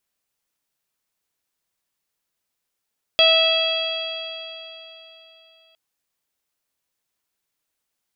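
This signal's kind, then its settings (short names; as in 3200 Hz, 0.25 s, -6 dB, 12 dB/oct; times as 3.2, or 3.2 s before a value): stretched partials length 2.56 s, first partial 648 Hz, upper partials -10.5/-14/-2/4/-15.5/-6 dB, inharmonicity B 0.0016, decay 3.48 s, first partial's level -17 dB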